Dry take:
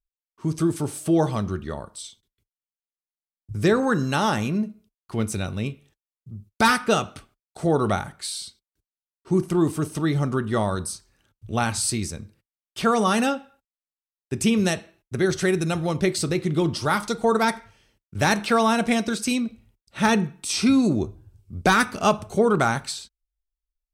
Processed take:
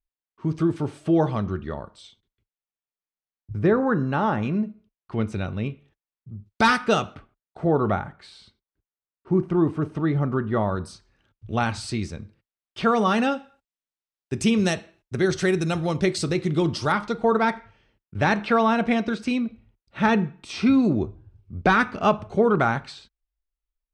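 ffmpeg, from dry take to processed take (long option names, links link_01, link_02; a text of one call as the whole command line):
ffmpeg -i in.wav -af "asetnsamples=nb_out_samples=441:pad=0,asendcmd='3.59 lowpass f 1600;4.43 lowpass f 2700;6.46 lowpass f 5100;7.15 lowpass f 1900;10.84 lowpass f 3700;13.32 lowpass f 6800;16.92 lowpass f 2800',lowpass=3000" out.wav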